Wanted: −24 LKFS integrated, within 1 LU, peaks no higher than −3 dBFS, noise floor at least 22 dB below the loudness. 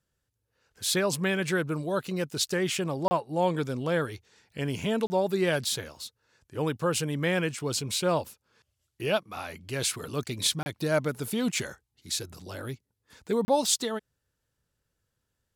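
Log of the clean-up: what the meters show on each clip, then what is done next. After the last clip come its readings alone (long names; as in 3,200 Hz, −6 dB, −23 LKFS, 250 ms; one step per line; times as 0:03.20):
number of dropouts 4; longest dropout 30 ms; integrated loudness −29.0 LKFS; sample peak −11.0 dBFS; target loudness −24.0 LKFS
→ repair the gap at 0:03.08/0:05.07/0:10.63/0:13.45, 30 ms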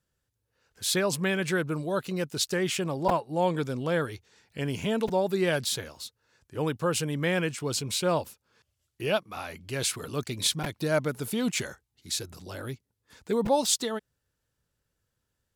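number of dropouts 0; integrated loudness −29.0 LKFS; sample peak −11.0 dBFS; target loudness −24.0 LKFS
→ level +5 dB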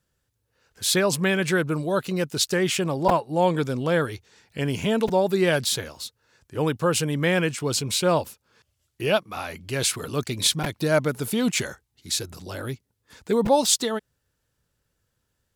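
integrated loudness −24.0 LKFS; sample peak −6.0 dBFS; background noise floor −76 dBFS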